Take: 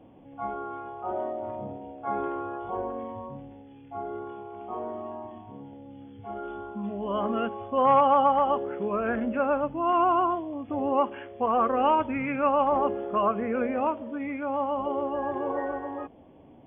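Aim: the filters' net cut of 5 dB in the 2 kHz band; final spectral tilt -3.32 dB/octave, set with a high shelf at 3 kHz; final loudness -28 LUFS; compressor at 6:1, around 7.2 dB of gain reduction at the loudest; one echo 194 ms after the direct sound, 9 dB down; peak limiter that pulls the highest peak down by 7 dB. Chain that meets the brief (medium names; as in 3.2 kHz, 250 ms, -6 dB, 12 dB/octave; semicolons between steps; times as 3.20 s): peaking EQ 2 kHz -6 dB; treble shelf 3 kHz -3.5 dB; compression 6:1, threshold -25 dBFS; peak limiter -25 dBFS; delay 194 ms -9 dB; trim +6 dB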